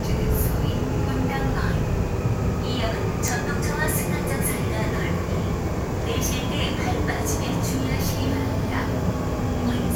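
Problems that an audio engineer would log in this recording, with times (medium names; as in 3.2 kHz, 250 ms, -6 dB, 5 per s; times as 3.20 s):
3.28 s: pop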